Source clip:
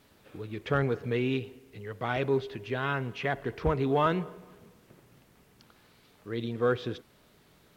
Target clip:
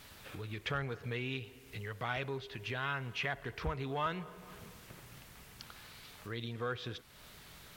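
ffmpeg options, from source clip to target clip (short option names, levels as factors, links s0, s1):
-af "acompressor=threshold=0.00355:ratio=2,equalizer=f=320:t=o:w=2.6:g=-11.5,volume=3.35"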